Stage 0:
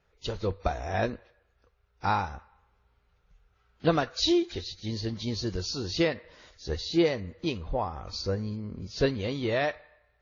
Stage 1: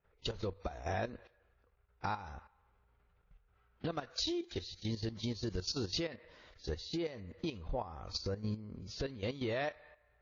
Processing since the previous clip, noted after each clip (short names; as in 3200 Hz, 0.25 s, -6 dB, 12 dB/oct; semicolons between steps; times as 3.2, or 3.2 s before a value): compressor 16:1, threshold -31 dBFS, peak gain reduction 14 dB; low-pass opened by the level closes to 2300 Hz, open at -36 dBFS; level quantiser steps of 12 dB; gain +1 dB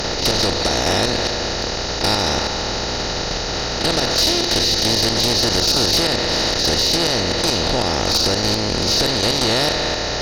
per-bin compression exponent 0.2; high shelf 4000 Hz +12 dB; sine folder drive 9 dB, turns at -8.5 dBFS; gain -2.5 dB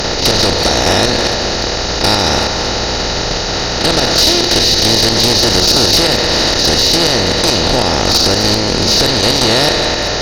reverse delay 0.224 s, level -11 dB; gain +6 dB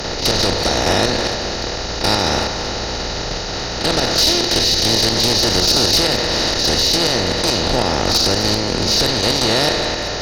three-band expander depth 40%; gain -4.5 dB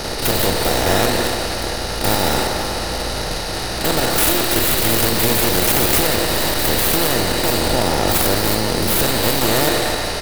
tracing distortion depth 0.29 ms; speakerphone echo 0.18 s, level -6 dB; on a send at -11.5 dB: reverb, pre-delay 3 ms; on the sum: gain -1 dB